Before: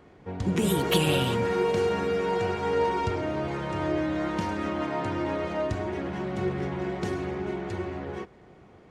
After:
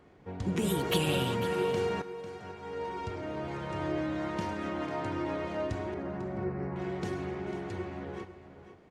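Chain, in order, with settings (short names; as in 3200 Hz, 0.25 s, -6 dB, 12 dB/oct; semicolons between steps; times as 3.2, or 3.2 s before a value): 2.02–3.77 fade in; 5.94–6.76 running mean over 13 samples; echo 0.497 s -12.5 dB; gain -5 dB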